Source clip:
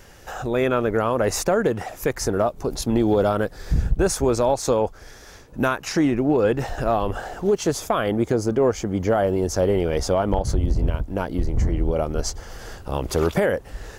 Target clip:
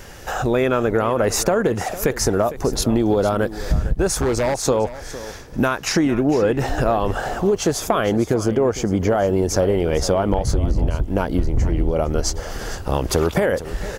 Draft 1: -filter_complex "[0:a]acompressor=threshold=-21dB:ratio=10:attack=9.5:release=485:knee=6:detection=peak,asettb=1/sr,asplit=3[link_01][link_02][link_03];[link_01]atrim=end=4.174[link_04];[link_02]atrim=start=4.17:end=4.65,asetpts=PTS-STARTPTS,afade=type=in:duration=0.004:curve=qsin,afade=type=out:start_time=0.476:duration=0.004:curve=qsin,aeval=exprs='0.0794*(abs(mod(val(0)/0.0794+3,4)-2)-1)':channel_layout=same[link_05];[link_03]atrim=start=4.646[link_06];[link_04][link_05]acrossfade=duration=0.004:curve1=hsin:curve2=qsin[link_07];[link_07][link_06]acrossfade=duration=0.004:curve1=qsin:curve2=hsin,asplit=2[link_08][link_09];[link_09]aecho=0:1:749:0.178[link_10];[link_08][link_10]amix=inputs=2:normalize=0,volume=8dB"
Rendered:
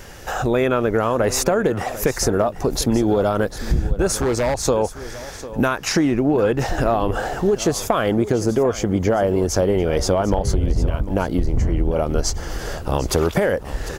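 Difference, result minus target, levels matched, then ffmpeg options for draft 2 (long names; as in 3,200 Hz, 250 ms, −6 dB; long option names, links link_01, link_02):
echo 293 ms late
-filter_complex "[0:a]acompressor=threshold=-21dB:ratio=10:attack=9.5:release=485:knee=6:detection=peak,asettb=1/sr,asplit=3[link_01][link_02][link_03];[link_01]atrim=end=4.174[link_04];[link_02]atrim=start=4.17:end=4.65,asetpts=PTS-STARTPTS,afade=type=in:duration=0.004:curve=qsin,afade=type=out:start_time=0.476:duration=0.004:curve=qsin,aeval=exprs='0.0794*(abs(mod(val(0)/0.0794+3,4)-2)-1)':channel_layout=same[link_05];[link_03]atrim=start=4.646[link_06];[link_04][link_05]acrossfade=duration=0.004:curve1=hsin:curve2=qsin[link_07];[link_07][link_06]acrossfade=duration=0.004:curve1=qsin:curve2=hsin,asplit=2[link_08][link_09];[link_09]aecho=0:1:456:0.178[link_10];[link_08][link_10]amix=inputs=2:normalize=0,volume=8dB"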